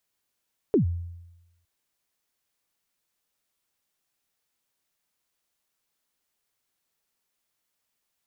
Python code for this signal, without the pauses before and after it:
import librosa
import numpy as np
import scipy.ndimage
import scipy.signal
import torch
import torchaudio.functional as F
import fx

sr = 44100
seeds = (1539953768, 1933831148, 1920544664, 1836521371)

y = fx.drum_kick(sr, seeds[0], length_s=0.91, level_db=-15.0, start_hz=470.0, end_hz=86.0, sweep_ms=112.0, decay_s=0.99, click=False)